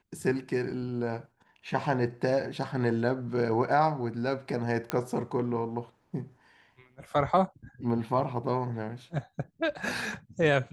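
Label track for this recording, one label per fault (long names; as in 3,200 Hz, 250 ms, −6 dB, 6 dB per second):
4.900000	4.900000	click −14 dBFS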